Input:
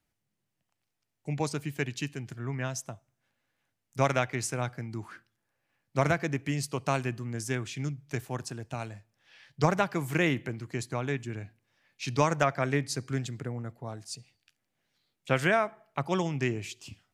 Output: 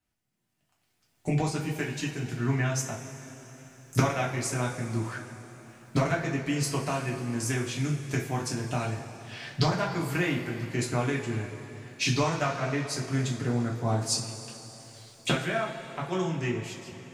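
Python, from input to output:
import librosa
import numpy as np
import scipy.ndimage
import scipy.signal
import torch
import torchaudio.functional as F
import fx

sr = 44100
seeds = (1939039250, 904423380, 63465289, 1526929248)

y = fx.fade_out_tail(x, sr, length_s=4.93)
y = fx.recorder_agc(y, sr, target_db=-14.0, rise_db_per_s=14.0, max_gain_db=30)
y = fx.rev_double_slope(y, sr, seeds[0], early_s=0.32, late_s=3.8, knee_db=-17, drr_db=-4.0)
y = y * 10.0 ** (-7.0 / 20.0)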